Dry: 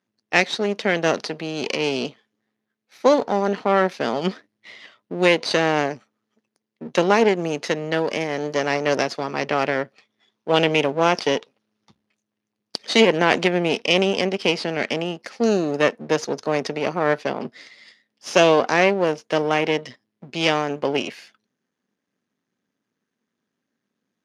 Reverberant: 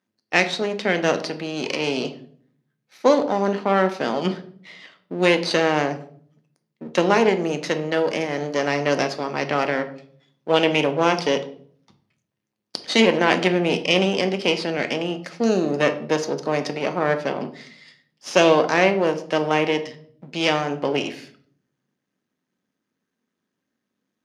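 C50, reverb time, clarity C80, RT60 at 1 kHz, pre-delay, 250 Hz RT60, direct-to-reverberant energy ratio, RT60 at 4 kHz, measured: 13.0 dB, 0.55 s, 17.0 dB, 0.45 s, 3 ms, 0.80 s, 8.0 dB, 0.40 s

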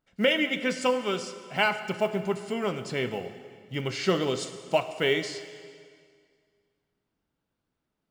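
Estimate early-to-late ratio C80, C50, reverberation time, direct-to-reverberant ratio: 12.0 dB, 10.5 dB, 2.0 s, 9.5 dB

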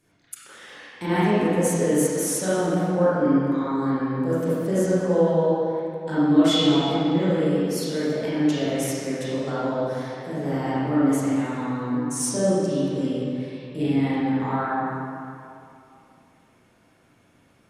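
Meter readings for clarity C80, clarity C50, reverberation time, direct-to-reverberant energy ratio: −3.0 dB, −6.5 dB, 2.6 s, −12.0 dB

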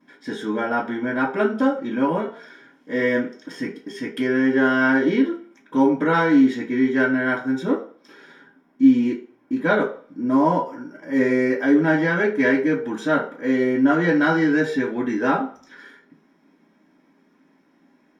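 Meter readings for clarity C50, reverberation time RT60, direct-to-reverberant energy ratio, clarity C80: 10.0 dB, 0.45 s, −13.0 dB, 14.0 dB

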